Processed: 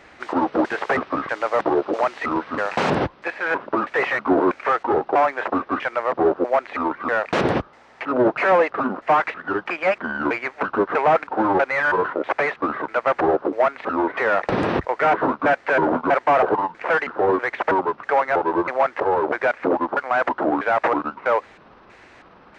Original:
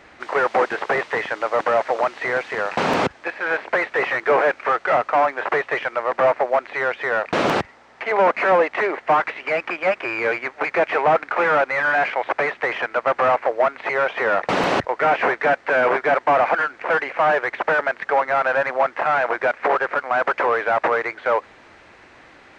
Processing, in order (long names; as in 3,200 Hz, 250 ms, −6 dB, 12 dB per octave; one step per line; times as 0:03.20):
pitch shifter gated in a rhythm −8 semitones, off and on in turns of 322 ms